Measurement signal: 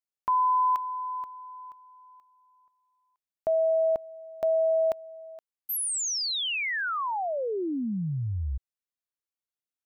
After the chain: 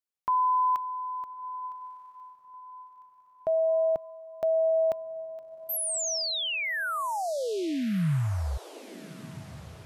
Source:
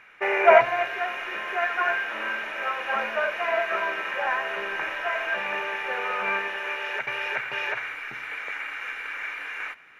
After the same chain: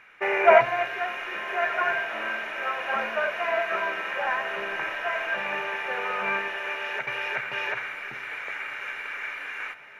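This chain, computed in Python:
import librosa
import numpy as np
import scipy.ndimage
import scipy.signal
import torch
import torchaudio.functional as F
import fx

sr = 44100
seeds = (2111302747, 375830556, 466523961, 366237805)

p1 = fx.dynamic_eq(x, sr, hz=150.0, q=1.5, threshold_db=-51.0, ratio=4.0, max_db=6)
p2 = p1 + fx.echo_diffused(p1, sr, ms=1301, feedback_pct=45, wet_db=-16.0, dry=0)
y = p2 * librosa.db_to_amplitude(-1.0)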